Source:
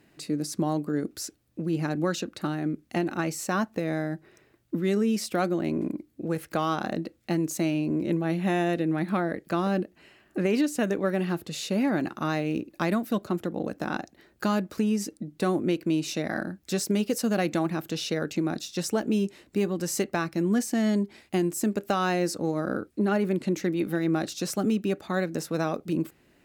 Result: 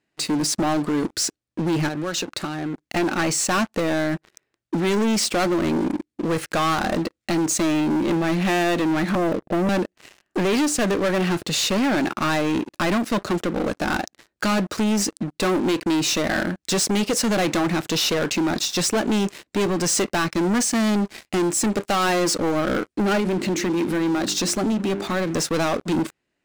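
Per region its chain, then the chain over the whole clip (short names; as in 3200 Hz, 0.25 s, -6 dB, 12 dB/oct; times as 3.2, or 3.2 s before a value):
1.88–2.96 notch 220 Hz, Q 5.5 + compressor 5:1, threshold -35 dBFS
9.15–9.69 steep low-pass 720 Hz 72 dB/oct + low shelf 380 Hz +2.5 dB
23.2–25.31 bell 250 Hz +5.5 dB 1.2 oct + notches 50/100/150/200/250/300/350/400 Hz + compressor 2:1, threshold -31 dBFS
whole clip: LPF 9300 Hz 24 dB/oct; low shelf 490 Hz -7 dB; sample leveller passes 5; gain -2 dB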